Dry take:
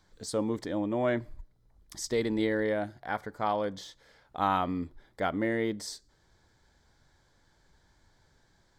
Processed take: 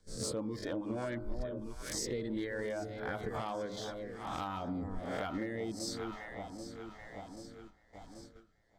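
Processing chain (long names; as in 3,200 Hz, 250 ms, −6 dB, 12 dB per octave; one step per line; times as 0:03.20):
peak hold with a rise ahead of every peak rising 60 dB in 0.45 s
in parallel at −8 dB: soft clipping −26 dBFS, distortion −11 dB
on the sum: reverb reduction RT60 0.91 s
on a send: delay that swaps between a low-pass and a high-pass 392 ms, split 920 Hz, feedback 75%, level −12 dB
on the sum: rotating-speaker cabinet horn 6.7 Hz, later 1.1 Hz, at 0:01.27
noise gate −55 dBFS, range −12 dB
hum removal 51.32 Hz, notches 30
downward compressor 20 to 1, threshold −36 dBFS, peak gain reduction 15 dB
low-shelf EQ 120 Hz +6.5 dB
gain into a clipping stage and back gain 30.5 dB
level +2 dB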